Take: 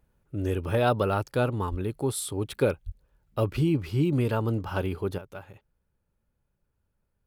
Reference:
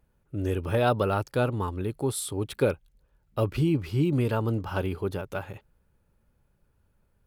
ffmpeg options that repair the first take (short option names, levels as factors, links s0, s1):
-filter_complex "[0:a]asplit=3[s0][s1][s2];[s0]afade=t=out:st=1.7:d=0.02[s3];[s1]highpass=f=140:w=0.5412,highpass=f=140:w=1.3066,afade=t=in:st=1.7:d=0.02,afade=t=out:st=1.82:d=0.02[s4];[s2]afade=t=in:st=1.82:d=0.02[s5];[s3][s4][s5]amix=inputs=3:normalize=0,asplit=3[s6][s7][s8];[s6]afade=t=out:st=2.85:d=0.02[s9];[s7]highpass=f=140:w=0.5412,highpass=f=140:w=1.3066,afade=t=in:st=2.85:d=0.02,afade=t=out:st=2.97:d=0.02[s10];[s8]afade=t=in:st=2.97:d=0.02[s11];[s9][s10][s11]amix=inputs=3:normalize=0,asetnsamples=n=441:p=0,asendcmd='5.18 volume volume 8.5dB',volume=1"